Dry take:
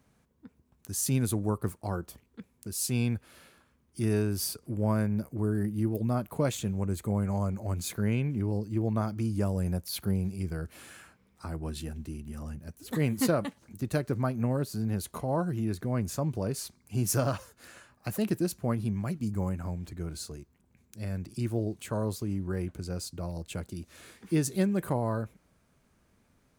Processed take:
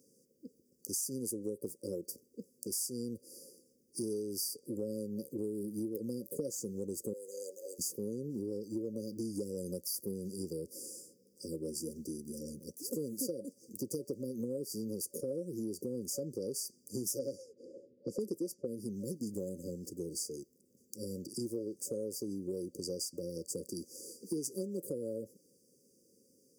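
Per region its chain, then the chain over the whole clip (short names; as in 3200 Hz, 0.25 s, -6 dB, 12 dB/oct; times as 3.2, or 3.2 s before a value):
7.13–7.79 HPF 550 Hz 24 dB/oct + mismatched tape noise reduction encoder only
17.19–18.67 low-pass opened by the level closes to 1000 Hz, open at -25 dBFS + bell 480 Hz +5.5 dB 2.2 oct
whole clip: HPF 380 Hz 12 dB/oct; FFT band-reject 560–4600 Hz; compressor, threshold -43 dBFS; gain +8 dB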